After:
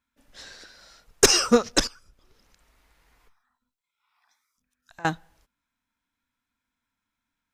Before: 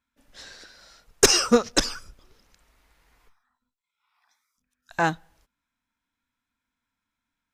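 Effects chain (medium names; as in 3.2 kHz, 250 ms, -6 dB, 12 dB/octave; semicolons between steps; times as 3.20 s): 1.87–5.05 s: compression 2.5:1, threshold -55 dBFS, peak gain reduction 23.5 dB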